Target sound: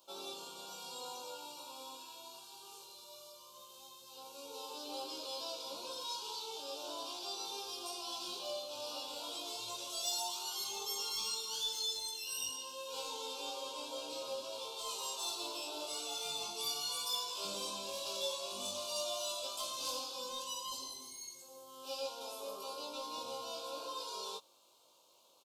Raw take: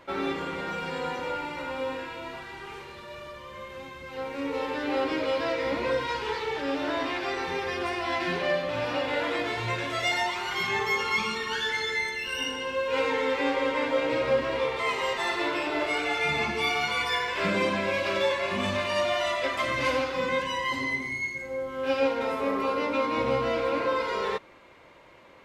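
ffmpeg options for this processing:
ffmpeg -i in.wav -filter_complex "[0:a]aderivative,asplit=2[link_01][link_02];[link_02]asoftclip=type=hard:threshold=-38dB,volume=-7dB[link_03];[link_01][link_03]amix=inputs=2:normalize=0,asuperstop=centerf=1900:order=4:qfactor=0.71,asplit=2[link_04][link_05];[link_05]adelay=20,volume=-4dB[link_06];[link_04][link_06]amix=inputs=2:normalize=0,volume=1dB" out.wav

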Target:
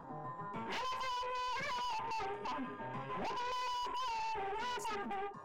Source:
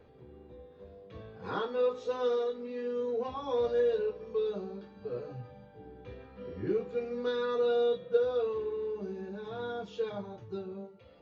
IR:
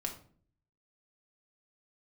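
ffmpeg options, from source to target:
-af "aeval=exprs='(tanh(224*val(0)+0.35)-tanh(0.35))/224':channel_layout=same,afwtdn=0.00158,asetrate=90846,aresample=44100,volume=9dB"

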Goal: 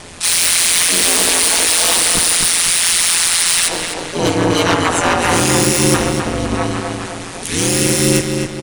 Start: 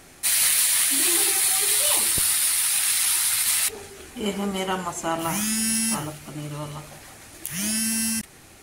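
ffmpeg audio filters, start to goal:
ffmpeg -i in.wav -filter_complex "[0:a]asplit=3[link_01][link_02][link_03];[link_02]asetrate=58866,aresample=44100,atempo=0.749154,volume=-2dB[link_04];[link_03]asetrate=88200,aresample=44100,atempo=0.5,volume=-3dB[link_05];[link_01][link_04][link_05]amix=inputs=3:normalize=0,aresample=22050,aresample=44100,aeval=exprs='0.422*sin(PI/2*3.16*val(0)/0.422)':channel_layout=same,asplit=2[link_06][link_07];[link_07]adelay=255,lowpass=frequency=3900:poles=1,volume=-4dB,asplit=2[link_08][link_09];[link_09]adelay=255,lowpass=frequency=3900:poles=1,volume=0.48,asplit=2[link_10][link_11];[link_11]adelay=255,lowpass=frequency=3900:poles=1,volume=0.48,asplit=2[link_12][link_13];[link_13]adelay=255,lowpass=frequency=3900:poles=1,volume=0.48,asplit=2[link_14][link_15];[link_15]adelay=255,lowpass=frequency=3900:poles=1,volume=0.48,asplit=2[link_16][link_17];[link_17]adelay=255,lowpass=frequency=3900:poles=1,volume=0.48[link_18];[link_08][link_10][link_12][link_14][link_16][link_18]amix=inputs=6:normalize=0[link_19];[link_06][link_19]amix=inputs=2:normalize=0,aeval=exprs='val(0)*sin(2*PI*86*n/s)':channel_layout=same" out.wav

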